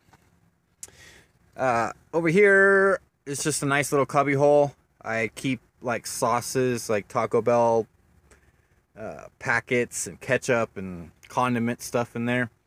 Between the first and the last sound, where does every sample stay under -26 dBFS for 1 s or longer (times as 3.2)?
7.82–9.02